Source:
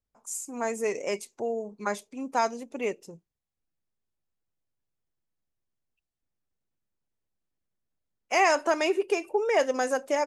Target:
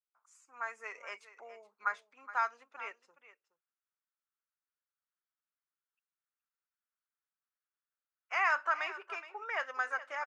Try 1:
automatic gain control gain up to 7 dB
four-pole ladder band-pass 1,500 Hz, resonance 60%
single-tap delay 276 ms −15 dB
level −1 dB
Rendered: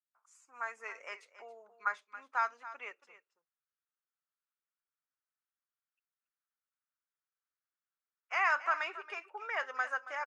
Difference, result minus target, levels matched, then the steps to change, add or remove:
echo 144 ms early
change: single-tap delay 420 ms −15 dB

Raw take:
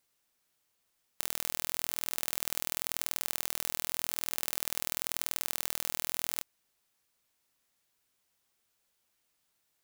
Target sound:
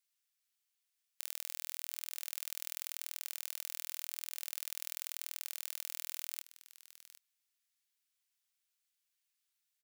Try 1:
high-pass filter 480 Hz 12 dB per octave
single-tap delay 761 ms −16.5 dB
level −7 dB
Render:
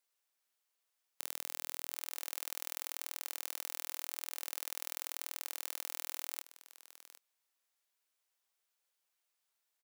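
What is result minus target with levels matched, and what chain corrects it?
500 Hz band +18.5 dB
high-pass filter 1,900 Hz 12 dB per octave
single-tap delay 761 ms −16.5 dB
level −7 dB

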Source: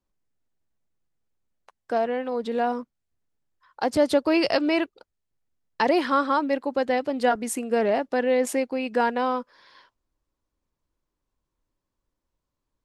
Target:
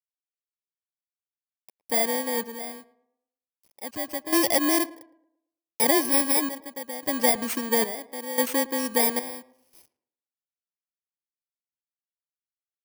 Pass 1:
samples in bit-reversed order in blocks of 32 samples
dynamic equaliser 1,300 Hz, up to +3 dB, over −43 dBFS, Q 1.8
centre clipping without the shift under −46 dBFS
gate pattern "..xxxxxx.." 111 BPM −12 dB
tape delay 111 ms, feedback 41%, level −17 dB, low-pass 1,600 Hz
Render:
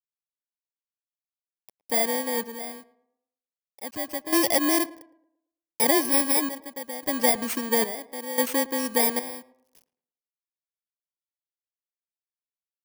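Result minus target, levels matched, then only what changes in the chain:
centre clipping without the shift: distortion +7 dB
change: centre clipping without the shift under −52.5 dBFS

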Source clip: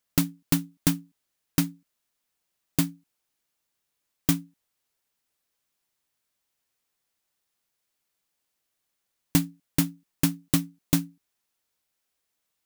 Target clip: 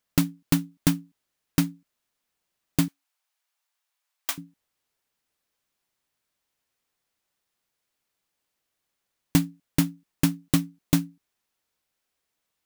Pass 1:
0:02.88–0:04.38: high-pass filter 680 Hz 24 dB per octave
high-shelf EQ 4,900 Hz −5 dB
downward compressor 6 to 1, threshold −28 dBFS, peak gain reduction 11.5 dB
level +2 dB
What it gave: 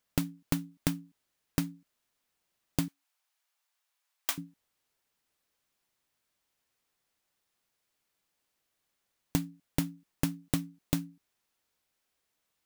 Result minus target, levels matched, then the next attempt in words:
downward compressor: peak gain reduction +11.5 dB
0:02.88–0:04.38: high-pass filter 680 Hz 24 dB per octave
high-shelf EQ 4,900 Hz −5 dB
level +2 dB

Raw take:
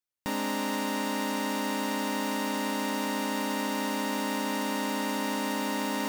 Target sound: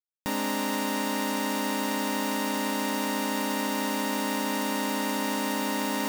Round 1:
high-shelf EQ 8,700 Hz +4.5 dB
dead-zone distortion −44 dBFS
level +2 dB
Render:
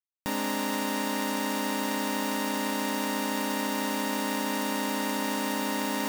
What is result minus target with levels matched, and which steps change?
dead-zone distortion: distortion +10 dB
change: dead-zone distortion −53.5 dBFS

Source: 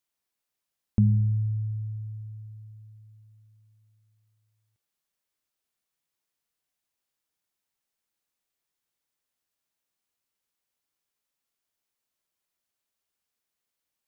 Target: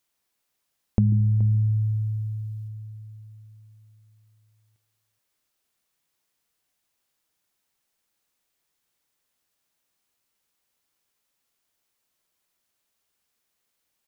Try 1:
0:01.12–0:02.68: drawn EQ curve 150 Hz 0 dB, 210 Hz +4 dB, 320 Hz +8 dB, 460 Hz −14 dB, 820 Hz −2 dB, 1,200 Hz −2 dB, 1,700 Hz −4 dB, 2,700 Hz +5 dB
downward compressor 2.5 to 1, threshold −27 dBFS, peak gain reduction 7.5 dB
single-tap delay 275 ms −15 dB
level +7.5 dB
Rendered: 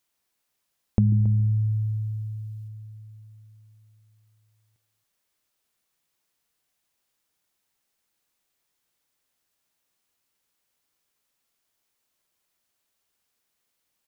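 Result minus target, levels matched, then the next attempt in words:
echo 150 ms early
0:01.12–0:02.68: drawn EQ curve 150 Hz 0 dB, 210 Hz +4 dB, 320 Hz +8 dB, 460 Hz −14 dB, 820 Hz −2 dB, 1,200 Hz −2 dB, 1,700 Hz −4 dB, 2,700 Hz +5 dB
downward compressor 2.5 to 1, threshold −27 dBFS, peak gain reduction 7.5 dB
single-tap delay 425 ms −15 dB
level +7.5 dB

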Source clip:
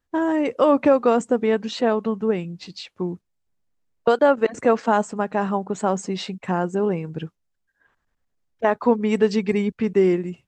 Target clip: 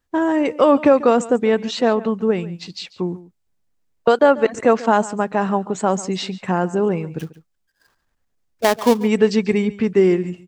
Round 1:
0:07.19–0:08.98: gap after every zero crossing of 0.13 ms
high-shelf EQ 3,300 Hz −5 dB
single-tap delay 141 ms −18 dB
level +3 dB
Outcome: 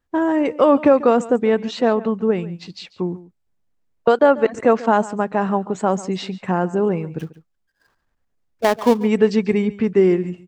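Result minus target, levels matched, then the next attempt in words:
8,000 Hz band −6.0 dB
0:07.19–0:08.98: gap after every zero crossing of 0.13 ms
high-shelf EQ 3,300 Hz +2.5 dB
single-tap delay 141 ms −18 dB
level +3 dB

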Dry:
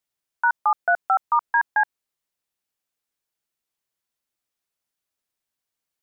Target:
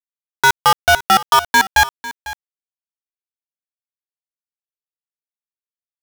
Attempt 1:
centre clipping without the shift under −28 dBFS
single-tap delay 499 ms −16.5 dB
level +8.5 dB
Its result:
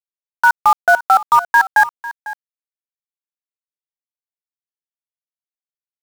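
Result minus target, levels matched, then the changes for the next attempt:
centre clipping without the shift: distortion −15 dB
change: centre clipping without the shift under −17 dBFS

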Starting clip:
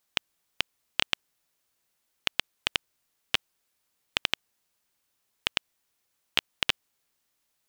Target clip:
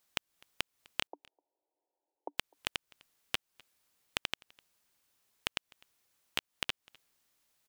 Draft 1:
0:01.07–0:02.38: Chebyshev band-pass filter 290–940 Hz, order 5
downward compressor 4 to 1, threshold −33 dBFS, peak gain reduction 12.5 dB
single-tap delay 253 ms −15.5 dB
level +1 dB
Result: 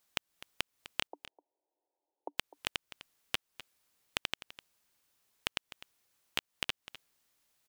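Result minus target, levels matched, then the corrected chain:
echo-to-direct +11 dB
0:01.07–0:02.38: Chebyshev band-pass filter 290–940 Hz, order 5
downward compressor 4 to 1, threshold −33 dBFS, peak gain reduction 12.5 dB
single-tap delay 253 ms −26.5 dB
level +1 dB

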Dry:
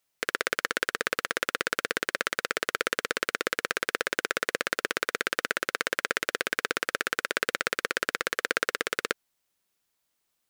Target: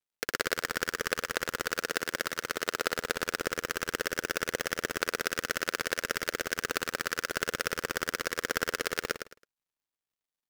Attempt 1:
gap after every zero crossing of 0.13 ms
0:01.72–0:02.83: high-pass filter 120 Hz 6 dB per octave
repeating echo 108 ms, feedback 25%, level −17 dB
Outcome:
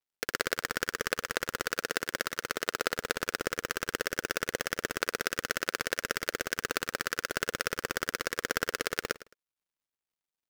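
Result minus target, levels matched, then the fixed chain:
echo-to-direct −9 dB
gap after every zero crossing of 0.13 ms
0:01.72–0:02.83: high-pass filter 120 Hz 6 dB per octave
repeating echo 108 ms, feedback 25%, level −8 dB

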